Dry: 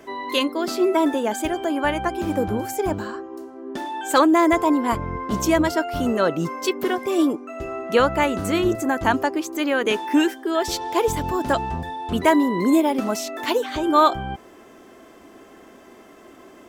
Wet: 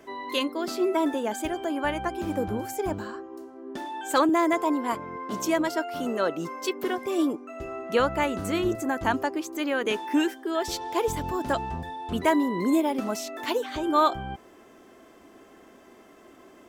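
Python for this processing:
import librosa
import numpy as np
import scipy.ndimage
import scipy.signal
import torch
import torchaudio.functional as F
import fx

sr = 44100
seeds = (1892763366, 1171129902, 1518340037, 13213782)

y = fx.highpass(x, sr, hz=230.0, slope=12, at=(4.29, 6.84))
y = y * 10.0 ** (-5.5 / 20.0)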